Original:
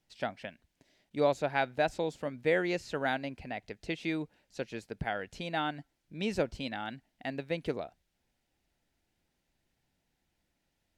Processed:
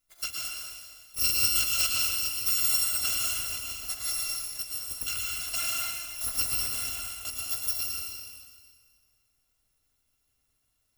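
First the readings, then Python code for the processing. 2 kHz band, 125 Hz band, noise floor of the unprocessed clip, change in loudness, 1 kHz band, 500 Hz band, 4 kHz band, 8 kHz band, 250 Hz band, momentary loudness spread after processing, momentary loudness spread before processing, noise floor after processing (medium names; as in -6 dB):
+0.5 dB, -6.0 dB, -81 dBFS, +7.5 dB, -7.5 dB, -21.0 dB, +14.0 dB, +28.0 dB, -18.0 dB, 12 LU, 13 LU, -75 dBFS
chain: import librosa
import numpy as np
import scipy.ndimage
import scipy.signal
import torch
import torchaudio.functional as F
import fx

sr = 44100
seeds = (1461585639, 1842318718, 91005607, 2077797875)

y = fx.bit_reversed(x, sr, seeds[0], block=256)
y = fx.rev_plate(y, sr, seeds[1], rt60_s=1.8, hf_ratio=1.0, predelay_ms=95, drr_db=-2.5)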